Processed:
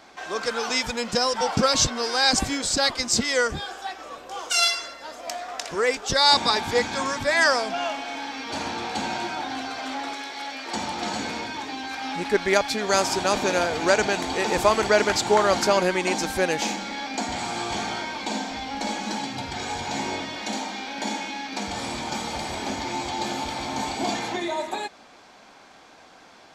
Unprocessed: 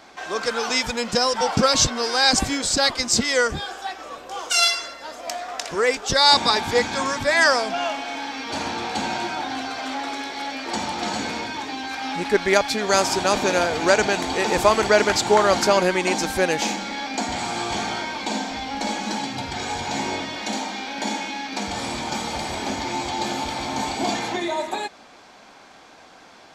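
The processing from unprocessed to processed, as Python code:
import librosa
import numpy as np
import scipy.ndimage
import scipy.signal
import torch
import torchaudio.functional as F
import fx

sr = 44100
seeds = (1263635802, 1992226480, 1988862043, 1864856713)

y = fx.low_shelf(x, sr, hz=450.0, db=-7.5, at=(10.13, 10.74))
y = y * librosa.db_to_amplitude(-2.5)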